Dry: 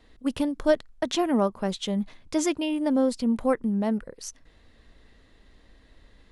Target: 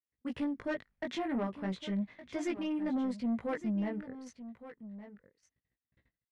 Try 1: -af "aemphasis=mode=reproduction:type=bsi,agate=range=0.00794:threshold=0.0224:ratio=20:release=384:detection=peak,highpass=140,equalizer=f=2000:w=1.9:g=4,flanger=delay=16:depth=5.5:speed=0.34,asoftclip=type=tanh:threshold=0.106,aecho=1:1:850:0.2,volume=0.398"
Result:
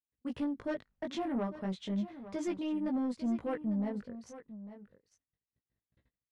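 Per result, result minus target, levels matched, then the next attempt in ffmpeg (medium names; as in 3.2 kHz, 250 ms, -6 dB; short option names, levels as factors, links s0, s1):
echo 314 ms early; 2 kHz band -5.0 dB
-af "aemphasis=mode=reproduction:type=bsi,agate=range=0.00794:threshold=0.0224:ratio=20:release=384:detection=peak,highpass=140,equalizer=f=2000:w=1.9:g=4,flanger=delay=16:depth=5.5:speed=0.34,asoftclip=type=tanh:threshold=0.106,aecho=1:1:1164:0.2,volume=0.398"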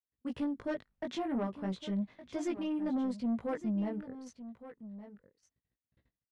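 2 kHz band -5.0 dB
-af "aemphasis=mode=reproduction:type=bsi,agate=range=0.00794:threshold=0.0224:ratio=20:release=384:detection=peak,highpass=140,equalizer=f=2000:w=1.9:g=11.5,flanger=delay=16:depth=5.5:speed=0.34,asoftclip=type=tanh:threshold=0.106,aecho=1:1:1164:0.2,volume=0.398"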